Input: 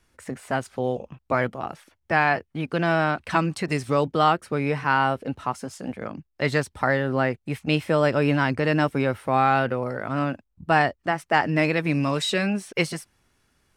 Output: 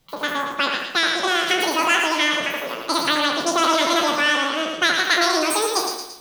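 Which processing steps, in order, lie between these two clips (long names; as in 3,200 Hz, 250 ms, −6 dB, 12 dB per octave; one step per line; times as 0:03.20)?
peak hold with a decay on every bin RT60 0.73 s
echo with a time of its own for lows and highs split 1,100 Hz, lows 176 ms, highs 250 ms, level −4 dB
change of speed 2.22×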